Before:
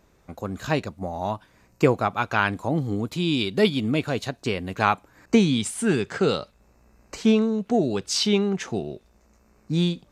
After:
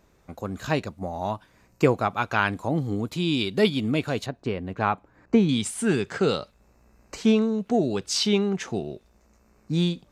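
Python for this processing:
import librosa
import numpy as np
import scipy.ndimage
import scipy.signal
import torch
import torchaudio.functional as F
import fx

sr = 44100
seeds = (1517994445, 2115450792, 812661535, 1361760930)

y = fx.lowpass(x, sr, hz=1200.0, slope=6, at=(4.26, 5.49))
y = F.gain(torch.from_numpy(y), -1.0).numpy()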